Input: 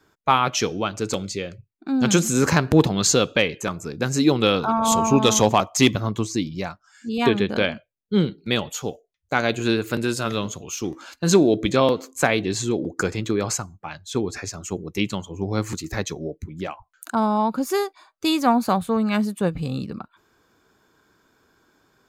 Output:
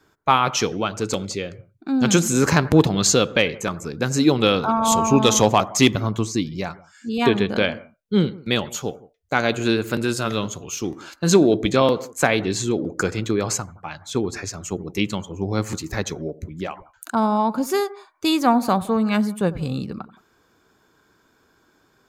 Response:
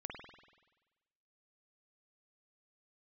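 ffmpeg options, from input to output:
-filter_complex "[0:a]asplit=2[link_01][link_02];[1:a]atrim=start_sample=2205,afade=type=out:start_time=0.16:duration=0.01,atrim=end_sample=7497,asetrate=26019,aresample=44100[link_03];[link_02][link_03]afir=irnorm=-1:irlink=0,volume=-14.5dB[link_04];[link_01][link_04]amix=inputs=2:normalize=0"

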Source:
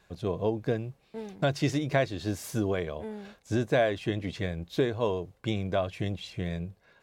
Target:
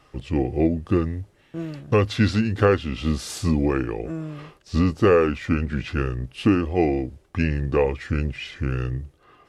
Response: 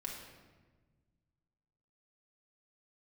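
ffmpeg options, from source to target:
-af "asetrate=32667,aresample=44100,volume=7.5dB"

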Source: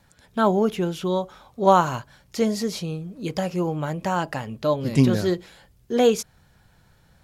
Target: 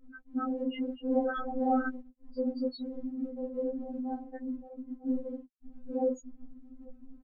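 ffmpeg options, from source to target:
ffmpeg -i in.wav -filter_complex "[0:a]aeval=exprs='val(0)+0.5*0.075*sgn(val(0))':channel_layout=same,acrossover=split=270[link_01][link_02];[link_02]acompressor=threshold=-19dB:ratio=4[link_03];[link_01][link_03]amix=inputs=2:normalize=0,asuperstop=centerf=1000:order=8:qfactor=2.1,alimiter=limit=-15.5dB:level=0:latency=1:release=55,asplit=3[link_04][link_05][link_06];[link_04]afade=type=out:start_time=4.58:duration=0.02[link_07];[link_05]aeval=exprs='0.0631*(abs(mod(val(0)/0.0631+3,4)-2)-1)':channel_layout=same,afade=type=in:start_time=4.58:duration=0.02,afade=type=out:start_time=5.06:duration=0.02[link_08];[link_06]afade=type=in:start_time=5.06:duration=0.02[link_09];[link_07][link_08][link_09]amix=inputs=3:normalize=0,aecho=1:1:813:0.168,asettb=1/sr,asplit=3[link_10][link_11][link_12];[link_10]atrim=end=1.114[link_13];[link_11]atrim=start=1.11:end=1.89,asetpts=PTS-STARTPTS,afade=type=in:duration=0.004:curve=qsin,afade=type=out:start_time=0.776:duration=0.004:curve=qsin,acontrast=87[link_14];[link_12]atrim=start=1.886[link_15];[link_13][link_14]acrossfade=duration=0.004:curve1=hsin:curve2=qsin[link_16];[link_16][link_15]acrossfade=duration=0.004:curve1=qsin:curve2=hsin,asettb=1/sr,asplit=3[link_17][link_18][link_19];[link_17]atrim=end=3.164[link_20];[link_18]atrim=start=3.16:end=3.9,asetpts=PTS-STARTPTS,afade=type=in:duration=0.004:curve=qsin,afade=type=out:start_time=0.736:duration=0.004:curve=qsin,highpass=130[link_21];[link_19]atrim=start=3.896[link_22];[link_20][link_21]acrossfade=duration=0.004:curve1=hsin:curve2=qsin[link_23];[link_23][link_22]acrossfade=duration=0.004:curve1=qsin:curve2=hsin,afftfilt=real='re*gte(hypot(re,im),0.224)':imag='im*gte(hypot(re,im),0.224)':win_size=1024:overlap=0.75,highshelf=frequency=4300:gain=9,afftfilt=real='hypot(re,im)*cos(2*PI*random(0))':imag='hypot(re,im)*sin(2*PI*random(1))':win_size=512:overlap=0.75,afftfilt=real='re*3.46*eq(mod(b,12),0)':imag='im*3.46*eq(mod(b,12),0)':win_size=2048:overlap=0.75" out.wav

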